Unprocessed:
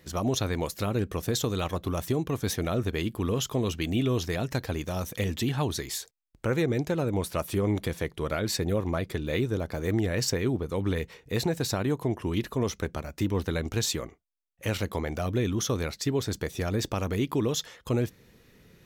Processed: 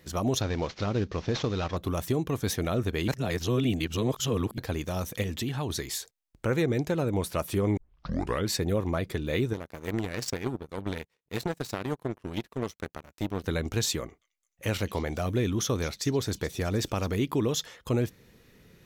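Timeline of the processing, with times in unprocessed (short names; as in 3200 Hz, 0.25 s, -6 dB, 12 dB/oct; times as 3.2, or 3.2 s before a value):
0.41–1.77 CVSD 32 kbps
3.08–4.58 reverse
5.22–5.7 compressor 2:1, threshold -30 dBFS
7.77 tape start 0.70 s
9.53–13.44 power-law curve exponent 2
14–17.16 delay with a stepping band-pass 0.214 s, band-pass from 4300 Hz, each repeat 0.7 oct, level -11.5 dB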